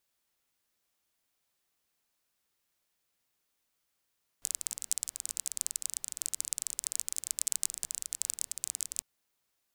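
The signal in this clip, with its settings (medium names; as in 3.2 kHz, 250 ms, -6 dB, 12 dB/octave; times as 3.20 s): rain from filtered ticks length 4.60 s, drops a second 24, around 7.8 kHz, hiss -27.5 dB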